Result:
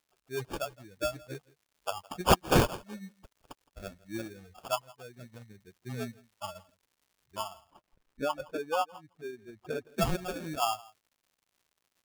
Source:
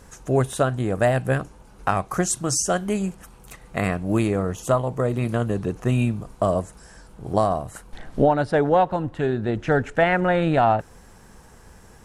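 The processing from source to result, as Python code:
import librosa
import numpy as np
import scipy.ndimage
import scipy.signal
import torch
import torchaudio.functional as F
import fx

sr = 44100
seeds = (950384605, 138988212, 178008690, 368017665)

y = fx.bin_expand(x, sr, power=3.0)
y = fx.tilt_eq(y, sr, slope=4.0)
y = fx.sample_hold(y, sr, seeds[0], rate_hz=2000.0, jitter_pct=0)
y = fx.dmg_crackle(y, sr, seeds[1], per_s=190.0, level_db=-52.0)
y = fx.high_shelf(y, sr, hz=3000.0, db=-10.5, at=(7.61, 9.89))
y = y + 10.0 ** (-23.0 / 20.0) * np.pad(y, (int(165 * sr / 1000.0), 0))[:len(y)]
y = y * 10.0 ** (-4.5 / 20.0)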